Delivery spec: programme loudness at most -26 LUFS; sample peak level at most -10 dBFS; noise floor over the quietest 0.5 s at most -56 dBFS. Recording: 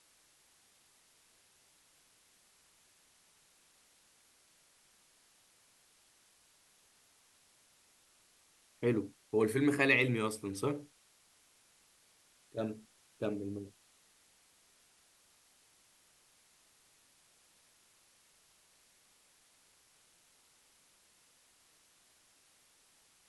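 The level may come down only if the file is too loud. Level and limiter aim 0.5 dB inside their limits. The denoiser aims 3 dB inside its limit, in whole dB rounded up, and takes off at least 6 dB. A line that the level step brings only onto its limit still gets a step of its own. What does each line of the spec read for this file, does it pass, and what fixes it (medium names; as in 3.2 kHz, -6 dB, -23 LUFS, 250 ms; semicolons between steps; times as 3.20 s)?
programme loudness -34.0 LUFS: pass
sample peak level -14.0 dBFS: pass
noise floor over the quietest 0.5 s -68 dBFS: pass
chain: none needed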